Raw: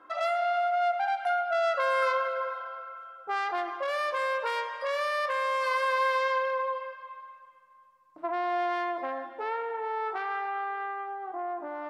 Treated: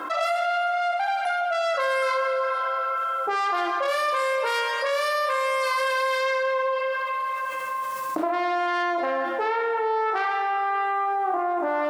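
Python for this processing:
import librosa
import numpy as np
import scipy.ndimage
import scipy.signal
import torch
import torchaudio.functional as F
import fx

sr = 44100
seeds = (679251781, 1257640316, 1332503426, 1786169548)

p1 = fx.recorder_agc(x, sr, target_db=-20.5, rise_db_per_s=13.0, max_gain_db=30)
p2 = scipy.signal.sosfilt(scipy.signal.cheby1(2, 1.0, 210.0, 'highpass', fs=sr, output='sos'), p1)
p3 = fx.high_shelf(p2, sr, hz=5100.0, db=11.0)
p4 = p3 + fx.room_early_taps(p3, sr, ms=(32, 57), db=(-9.5, -9.0), dry=0)
p5 = fx.rev_schroeder(p4, sr, rt60_s=1.5, comb_ms=26, drr_db=10.0)
y = fx.env_flatten(p5, sr, amount_pct=70)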